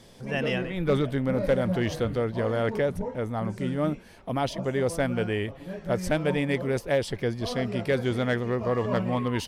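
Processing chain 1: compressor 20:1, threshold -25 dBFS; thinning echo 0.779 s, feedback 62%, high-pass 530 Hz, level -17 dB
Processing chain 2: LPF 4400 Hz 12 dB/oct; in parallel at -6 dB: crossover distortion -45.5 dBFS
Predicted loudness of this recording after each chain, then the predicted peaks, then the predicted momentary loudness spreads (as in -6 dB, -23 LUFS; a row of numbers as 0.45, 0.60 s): -31.5, -24.5 LUFS; -17.5, -11.5 dBFS; 3, 5 LU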